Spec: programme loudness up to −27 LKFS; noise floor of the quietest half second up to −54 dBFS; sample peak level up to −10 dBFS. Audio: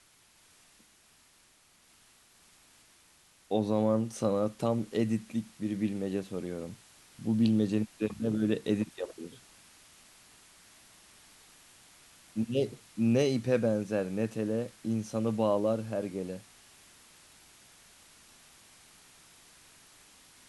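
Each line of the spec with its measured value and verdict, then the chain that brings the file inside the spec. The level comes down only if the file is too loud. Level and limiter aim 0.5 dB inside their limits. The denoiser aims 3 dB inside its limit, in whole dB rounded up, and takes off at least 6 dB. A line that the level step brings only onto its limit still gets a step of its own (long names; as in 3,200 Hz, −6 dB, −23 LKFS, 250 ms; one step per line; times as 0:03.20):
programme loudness −31.0 LKFS: in spec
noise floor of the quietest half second −63 dBFS: in spec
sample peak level −14.5 dBFS: in spec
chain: no processing needed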